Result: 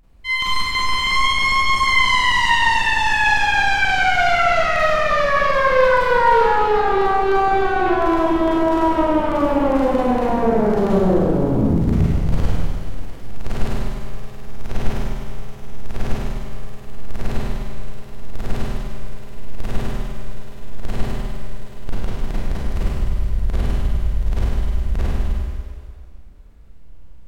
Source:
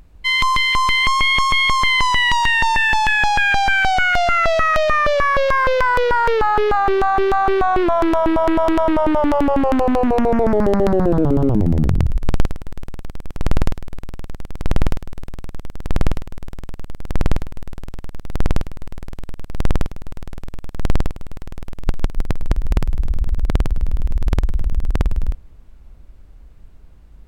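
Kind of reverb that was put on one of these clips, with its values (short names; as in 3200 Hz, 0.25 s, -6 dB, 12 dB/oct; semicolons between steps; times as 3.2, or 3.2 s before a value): Schroeder reverb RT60 2 s, combs from 33 ms, DRR -9.5 dB; gain -10.5 dB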